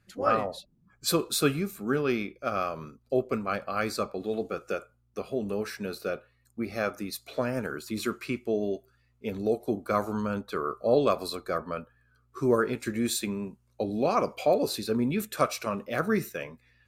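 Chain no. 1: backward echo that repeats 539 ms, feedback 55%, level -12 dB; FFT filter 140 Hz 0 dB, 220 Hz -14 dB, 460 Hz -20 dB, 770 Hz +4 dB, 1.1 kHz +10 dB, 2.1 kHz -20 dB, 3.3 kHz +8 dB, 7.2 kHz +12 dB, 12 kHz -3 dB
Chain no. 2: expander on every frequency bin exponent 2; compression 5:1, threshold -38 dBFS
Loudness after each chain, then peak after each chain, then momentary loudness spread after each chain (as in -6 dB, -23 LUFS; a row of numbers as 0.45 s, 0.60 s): -28.5 LUFS, -44.0 LUFS; -6.0 dBFS, -25.5 dBFS; 16 LU, 9 LU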